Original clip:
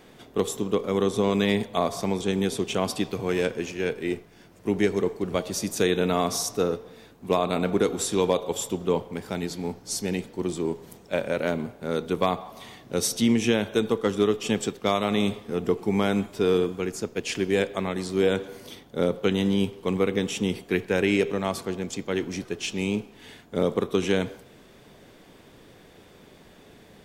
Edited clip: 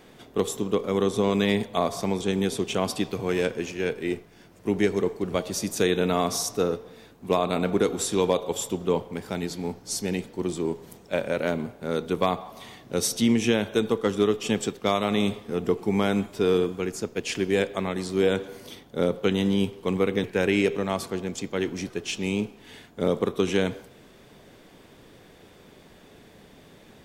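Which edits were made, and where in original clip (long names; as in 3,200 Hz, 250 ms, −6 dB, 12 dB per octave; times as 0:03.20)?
0:20.24–0:20.79: remove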